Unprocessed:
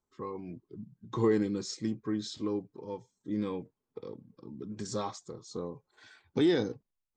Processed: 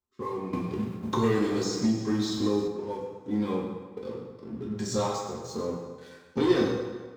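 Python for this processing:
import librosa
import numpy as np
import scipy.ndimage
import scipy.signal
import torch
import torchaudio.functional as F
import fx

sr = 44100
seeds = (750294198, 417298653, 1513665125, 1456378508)

y = fx.leveller(x, sr, passes=2)
y = fx.rev_fdn(y, sr, rt60_s=1.5, lf_ratio=0.85, hf_ratio=0.75, size_ms=78.0, drr_db=-3.0)
y = fx.band_squash(y, sr, depth_pct=70, at=(0.53, 2.68))
y = y * librosa.db_to_amplitude(-4.5)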